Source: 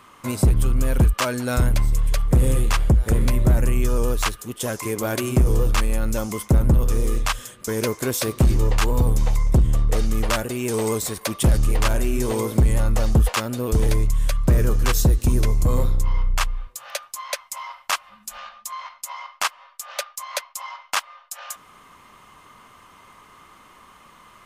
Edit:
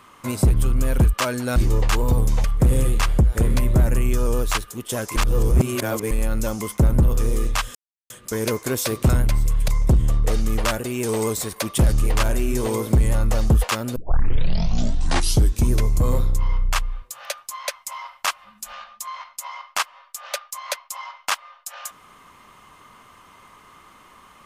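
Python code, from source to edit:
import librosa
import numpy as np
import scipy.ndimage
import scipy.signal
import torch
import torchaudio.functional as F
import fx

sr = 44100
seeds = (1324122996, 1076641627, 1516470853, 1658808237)

y = fx.edit(x, sr, fx.swap(start_s=1.56, length_s=0.59, other_s=8.45, other_length_s=0.88),
    fx.reverse_span(start_s=4.87, length_s=0.95),
    fx.insert_silence(at_s=7.46, length_s=0.35),
    fx.tape_start(start_s=13.61, length_s=1.73), tone=tone)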